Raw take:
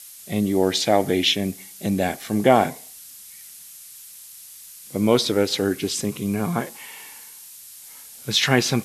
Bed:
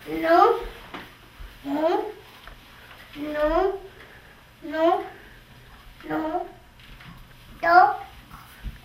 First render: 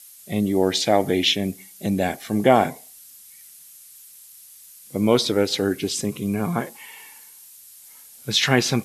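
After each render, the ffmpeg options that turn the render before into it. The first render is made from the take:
ffmpeg -i in.wav -af "afftdn=noise_reduction=6:noise_floor=-43" out.wav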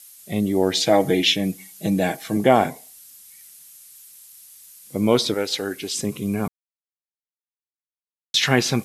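ffmpeg -i in.wav -filter_complex "[0:a]asettb=1/sr,asplit=3[link_01][link_02][link_03];[link_01]atrim=end=0.764[link_04];[link_02]atrim=start=0.76:end=2.37,asetpts=PTS-STARTPTS,afade=type=in:duration=0.004:curve=qsin,afade=type=out:start_time=1.606:duration=0.004:curve=qsin,aecho=1:1:6.3:0.65,atrim=end_sample=71001[link_05];[link_03]atrim=start=2.366[link_06];[link_04][link_05]acrossfade=duration=0.004:curve1=hsin:curve2=qsin[link_07];[link_07][link_06]acrossfade=duration=0.004:curve1=qsin:curve2=hsin,asettb=1/sr,asplit=3[link_08][link_09][link_10];[link_08]atrim=end=5.344[link_11];[link_09]atrim=start=5.34:end=5.95,asetpts=PTS-STARTPTS,afade=type=in:duration=0.004:curve=qsin,afade=type=out:start_time=0.606:duration=0.004:curve=qsin,lowshelf=frequency=380:gain=-11[link_12];[link_10]atrim=start=5.946[link_13];[link_11][link_12]acrossfade=duration=0.004:curve1=hsin:curve2=qsin[link_14];[link_14][link_13]acrossfade=duration=0.004:curve1=qsin:curve2=hsin,asplit=3[link_15][link_16][link_17];[link_15]atrim=end=6.48,asetpts=PTS-STARTPTS,afade=type=out:start_time=6.476:duration=0.004:curve=hsin[link_18];[link_16]atrim=start=6.48:end=8.34,asetpts=PTS-STARTPTS,volume=0[link_19];[link_17]atrim=start=8.34,asetpts=PTS-STARTPTS,afade=type=in:duration=0.004:curve=hsin[link_20];[link_18][link_19][link_20]concat=n=3:v=0:a=1" out.wav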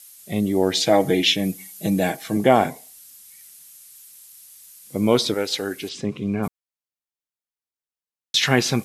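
ffmpeg -i in.wav -filter_complex "[0:a]asettb=1/sr,asplit=3[link_01][link_02][link_03];[link_01]atrim=end=1.384[link_04];[link_02]atrim=start=1.38:end=2.11,asetpts=PTS-STARTPTS,afade=type=in:duration=0.004:curve=qsin,afade=type=out:start_time=0.726:duration=0.004:curve=qsin,highshelf=frequency=11000:gain=7[link_05];[link_03]atrim=start=2.106[link_06];[link_04][link_05]acrossfade=duration=0.004:curve1=hsin:curve2=qsin[link_07];[link_07][link_06]acrossfade=duration=0.004:curve1=qsin:curve2=hsin,asplit=3[link_08][link_09][link_10];[link_08]afade=type=out:start_time=5.88:duration=0.02[link_11];[link_09]lowpass=3500,afade=type=in:start_time=5.88:duration=0.02,afade=type=out:start_time=6.42:duration=0.02[link_12];[link_10]afade=type=in:start_time=6.42:duration=0.02[link_13];[link_11][link_12][link_13]amix=inputs=3:normalize=0" out.wav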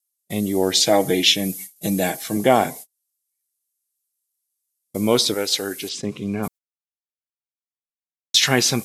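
ffmpeg -i in.wav -af "agate=range=-40dB:threshold=-37dB:ratio=16:detection=peak,bass=frequency=250:gain=-2,treble=frequency=4000:gain=8" out.wav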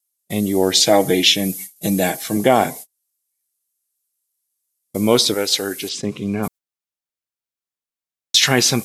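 ffmpeg -i in.wav -af "volume=3dB,alimiter=limit=-1dB:level=0:latency=1" out.wav

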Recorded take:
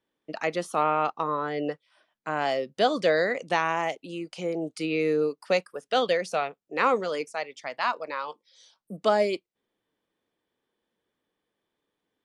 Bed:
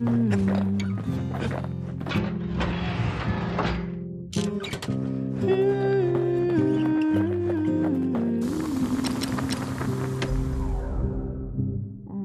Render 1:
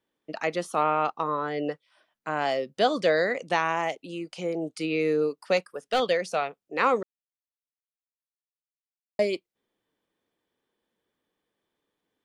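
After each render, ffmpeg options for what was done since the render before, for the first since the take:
ffmpeg -i in.wav -filter_complex "[0:a]asettb=1/sr,asplit=3[link_01][link_02][link_03];[link_01]atrim=end=5.574[link_04];[link_02]atrim=start=5.57:end=6,asetpts=PTS-STARTPTS,afade=type=in:duration=0.004:curve=qsin,afade=type=out:start_time=0.426:duration=0.004:curve=qsin,aeval=exprs='clip(val(0),-1,0.0944)':channel_layout=same[link_05];[link_03]atrim=start=5.996[link_06];[link_04][link_05]acrossfade=duration=0.004:curve1=hsin:curve2=qsin[link_07];[link_07][link_06]acrossfade=duration=0.004:curve1=qsin:curve2=hsin,asplit=3[link_08][link_09][link_10];[link_08]atrim=end=7.03,asetpts=PTS-STARTPTS,afade=type=out:start_time=7.026:duration=0.004:curve=hsin[link_11];[link_09]atrim=start=7.03:end=9.19,asetpts=PTS-STARTPTS,volume=0[link_12];[link_10]atrim=start=9.19,asetpts=PTS-STARTPTS,afade=type=in:duration=0.004:curve=hsin[link_13];[link_11][link_12][link_13]concat=n=3:v=0:a=1" out.wav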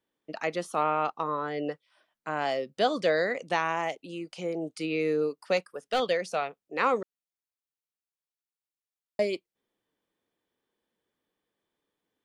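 ffmpeg -i in.wav -af "volume=-2.5dB" out.wav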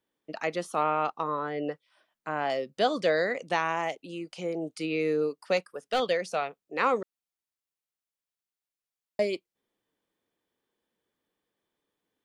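ffmpeg -i in.wav -filter_complex "[0:a]asettb=1/sr,asplit=3[link_01][link_02][link_03];[link_01]atrim=end=1.394[link_04];[link_02]atrim=start=1.39:end=2.5,asetpts=PTS-STARTPTS,afade=type=in:duration=0.004:curve=qsin,afade=type=out:start_time=1.106:duration=0.004:curve=qsin,acrossover=split=3100[link_05][link_06];[link_06]acompressor=threshold=-59dB:ratio=4:attack=1:release=60[link_07];[link_05][link_07]amix=inputs=2:normalize=0[link_08];[link_03]atrim=start=2.496[link_09];[link_04][link_08]acrossfade=duration=0.004:curve1=hsin:curve2=qsin[link_10];[link_10][link_09]acrossfade=duration=0.004:curve1=qsin:curve2=hsin" out.wav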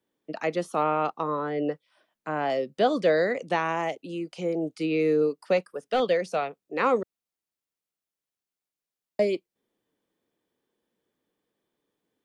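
ffmpeg -i in.wav -filter_complex "[0:a]acrossover=split=110|590|3600[link_01][link_02][link_03][link_04];[link_02]acontrast=36[link_05];[link_04]alimiter=level_in=14.5dB:limit=-24dB:level=0:latency=1:release=46,volume=-14.5dB[link_06];[link_01][link_05][link_03][link_06]amix=inputs=4:normalize=0" out.wav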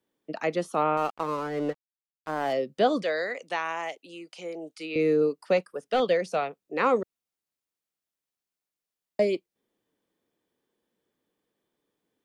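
ffmpeg -i in.wav -filter_complex "[0:a]asettb=1/sr,asplit=3[link_01][link_02][link_03];[link_01]atrim=end=0.974[link_04];[link_02]atrim=start=0.97:end=2.53,asetpts=PTS-STARTPTS,afade=type=in:duration=0.004:curve=qsin,afade=type=out:start_time=1.556:duration=0.004:curve=qsin,aeval=exprs='sgn(val(0))*max(abs(val(0))-0.00891,0)':channel_layout=same[link_05];[link_03]atrim=start=2.526[link_06];[link_04][link_05]acrossfade=duration=0.004:curve1=hsin:curve2=qsin[link_07];[link_07][link_06]acrossfade=duration=0.004:curve1=qsin:curve2=hsin,asettb=1/sr,asplit=3[link_08][link_09][link_10];[link_08]atrim=end=3.034[link_11];[link_09]atrim=start=3.03:end=4.96,asetpts=PTS-STARTPTS,afade=type=in:duration=0.004:curve=qsin,afade=type=out:start_time=1.926:duration=0.004:curve=qsin,highpass=frequency=1100:poles=1[link_12];[link_10]atrim=start=4.956[link_13];[link_11][link_12]acrossfade=duration=0.004:curve1=hsin:curve2=qsin[link_14];[link_14][link_13]acrossfade=duration=0.004:curve1=qsin:curve2=hsin" out.wav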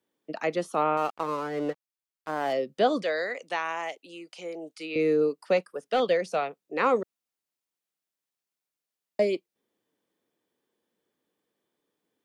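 ffmpeg -i in.wav -af "lowshelf=frequency=98:gain=-10" out.wav

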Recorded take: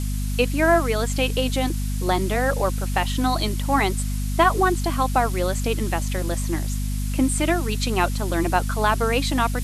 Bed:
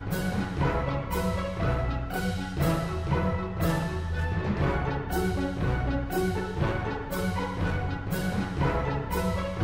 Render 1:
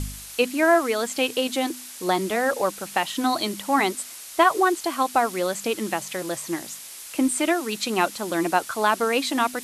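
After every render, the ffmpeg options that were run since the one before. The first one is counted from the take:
ffmpeg -i in.wav -af "bandreject=frequency=50:width_type=h:width=4,bandreject=frequency=100:width_type=h:width=4,bandreject=frequency=150:width_type=h:width=4,bandreject=frequency=200:width_type=h:width=4,bandreject=frequency=250:width_type=h:width=4" out.wav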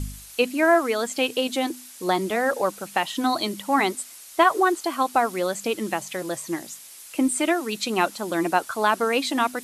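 ffmpeg -i in.wav -af "afftdn=noise_reduction=6:noise_floor=-40" out.wav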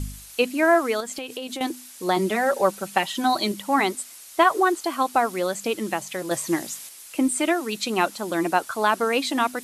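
ffmpeg -i in.wav -filter_complex "[0:a]asettb=1/sr,asplit=3[link_01][link_02][link_03];[link_01]atrim=end=1.004[link_04];[link_02]atrim=start=1:end=1.61,asetpts=PTS-STARTPTS,afade=type=in:duration=0.004:curve=qsin,afade=type=out:start_time=0.606:duration=0.004:curve=qsin,acompressor=threshold=-28dB:ratio=12:attack=3.2:release=140:knee=1:detection=peak[link_05];[link_03]atrim=start=1.606[link_06];[link_04][link_05]acrossfade=duration=0.004:curve1=hsin:curve2=qsin[link_07];[link_07][link_06]acrossfade=duration=0.004:curve1=qsin:curve2=hsin,asettb=1/sr,asplit=3[link_08][link_09][link_10];[link_08]atrim=end=2.164[link_11];[link_09]atrim=start=2.16:end=3.52,asetpts=PTS-STARTPTS,afade=type=in:duration=0.004:curve=qsin,afade=type=out:start_time=1.356:duration=0.004:curve=qsin,aecho=1:1:5.2:0.61,atrim=end_sample=59976[link_12];[link_10]atrim=start=3.516[link_13];[link_11][link_12]acrossfade=duration=0.004:curve1=hsin:curve2=qsin[link_14];[link_14][link_13]acrossfade=duration=0.004:curve1=qsin:curve2=hsin,asettb=1/sr,asplit=3[link_15][link_16][link_17];[link_15]atrim=end=6.314[link_18];[link_16]atrim=start=6.31:end=6.89,asetpts=PTS-STARTPTS,afade=type=in:duration=0.004:curve=qsin,afade=type=out:start_time=0.576:duration=0.004:curve=qsin,acontrast=24[link_19];[link_17]atrim=start=6.886[link_20];[link_18][link_19]acrossfade=duration=0.004:curve1=hsin:curve2=qsin[link_21];[link_21][link_20]acrossfade=duration=0.004:curve1=qsin:curve2=hsin" out.wav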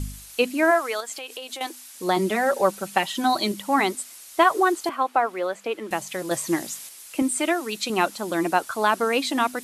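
ffmpeg -i in.wav -filter_complex "[0:a]asplit=3[link_01][link_02][link_03];[link_01]afade=type=out:start_time=0.7:duration=0.02[link_04];[link_02]highpass=570,afade=type=in:start_time=0.7:duration=0.02,afade=type=out:start_time=1.93:duration=0.02[link_05];[link_03]afade=type=in:start_time=1.93:duration=0.02[link_06];[link_04][link_05][link_06]amix=inputs=3:normalize=0,asettb=1/sr,asplit=3[link_07][link_08][link_09];[link_07]atrim=end=4.894[link_10];[link_08]atrim=start=4.89:end=5.91,asetpts=PTS-STARTPTS,afade=type=in:duration=0.004:curve=qsin,afade=type=out:start_time=1.016:duration=0.004:curve=qsin,acrossover=split=320 3000:gain=0.178 1 0.178[link_11][link_12][link_13];[link_11][link_12][link_13]amix=inputs=3:normalize=0[link_14];[link_09]atrim=start=5.906[link_15];[link_10][link_14]acrossfade=duration=0.004:curve1=hsin:curve2=qsin[link_16];[link_16][link_15]acrossfade=duration=0.004:curve1=qsin:curve2=hsin,asettb=1/sr,asplit=3[link_17][link_18][link_19];[link_17]atrim=end=7.224[link_20];[link_18]atrim=start=7.22:end=7.9,asetpts=PTS-STARTPTS,afade=type=in:duration=0.004:curve=qsin,afade=type=out:start_time=0.676:duration=0.004:curve=qsin,highpass=frequency=240:poles=1[link_21];[link_19]atrim=start=7.896[link_22];[link_20][link_21]acrossfade=duration=0.004:curve1=hsin:curve2=qsin[link_23];[link_23][link_22]acrossfade=duration=0.004:curve1=qsin:curve2=hsin" out.wav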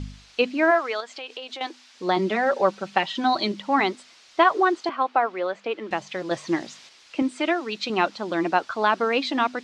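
ffmpeg -i in.wav -af "lowpass=frequency=5000:width=0.5412,lowpass=frequency=5000:width=1.3066,lowshelf=frequency=88:gain=-6" out.wav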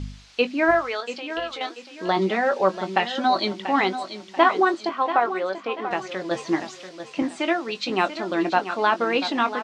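ffmpeg -i in.wav -filter_complex "[0:a]asplit=2[link_01][link_02];[link_02]adelay=21,volume=-10.5dB[link_03];[link_01][link_03]amix=inputs=2:normalize=0,aecho=1:1:687|1374|2061|2748:0.282|0.0986|0.0345|0.0121" out.wav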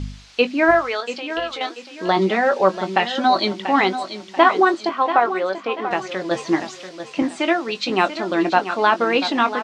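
ffmpeg -i in.wav -af "volume=4dB,alimiter=limit=-1dB:level=0:latency=1" out.wav

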